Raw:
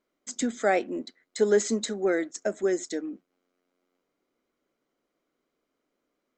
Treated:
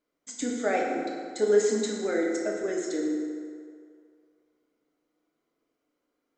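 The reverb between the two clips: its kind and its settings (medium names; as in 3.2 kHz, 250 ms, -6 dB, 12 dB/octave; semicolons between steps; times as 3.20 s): FDN reverb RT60 2.2 s, low-frequency decay 0.8×, high-frequency decay 0.6×, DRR -2.5 dB; trim -5 dB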